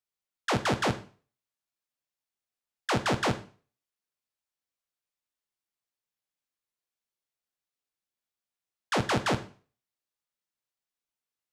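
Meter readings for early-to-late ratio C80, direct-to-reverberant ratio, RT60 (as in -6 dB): 18.5 dB, 7.0 dB, 0.40 s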